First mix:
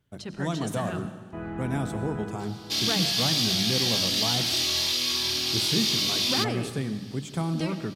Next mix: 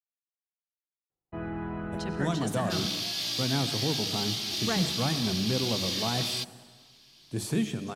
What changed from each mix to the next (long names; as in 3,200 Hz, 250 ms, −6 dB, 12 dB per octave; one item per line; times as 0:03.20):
speech: entry +1.80 s
second sound −6.5 dB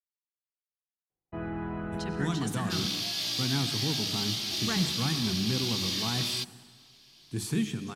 speech: add parametric band 590 Hz −14.5 dB 0.62 octaves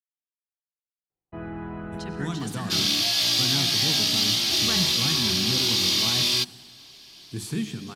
second sound +9.5 dB